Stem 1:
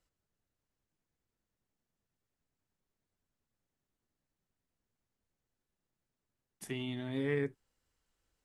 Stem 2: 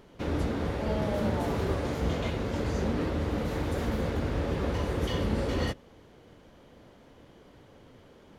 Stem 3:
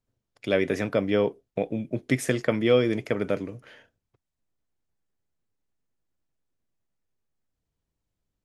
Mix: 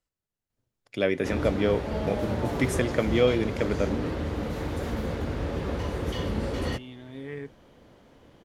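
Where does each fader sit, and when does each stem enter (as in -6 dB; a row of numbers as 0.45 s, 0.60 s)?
-4.5 dB, -0.5 dB, -1.5 dB; 0.00 s, 1.05 s, 0.50 s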